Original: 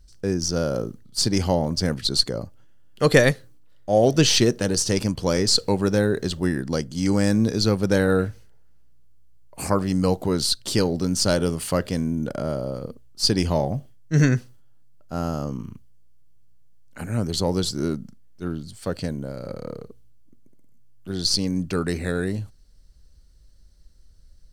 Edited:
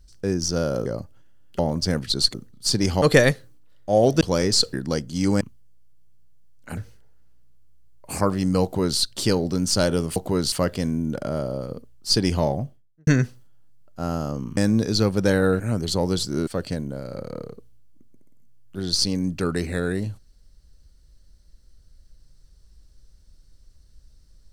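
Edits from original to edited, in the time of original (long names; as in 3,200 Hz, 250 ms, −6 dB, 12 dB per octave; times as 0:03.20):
0:00.86–0:01.54: swap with 0:02.29–0:03.02
0:04.21–0:05.16: remove
0:05.68–0:06.55: remove
0:07.23–0:08.26: swap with 0:15.70–0:17.06
0:10.12–0:10.48: duplicate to 0:11.65
0:13.60–0:14.20: fade out and dull
0:17.93–0:18.79: remove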